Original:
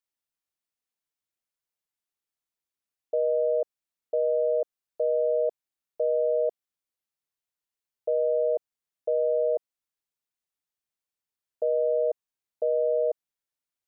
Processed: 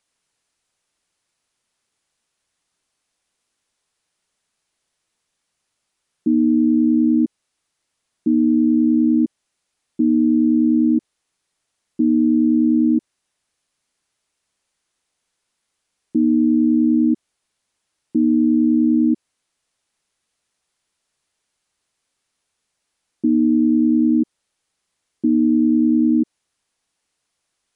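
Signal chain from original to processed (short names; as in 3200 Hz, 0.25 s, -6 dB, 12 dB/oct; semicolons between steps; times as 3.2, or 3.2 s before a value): speed mistake 15 ips tape played at 7.5 ips; maximiser +23 dB; gain -8.5 dB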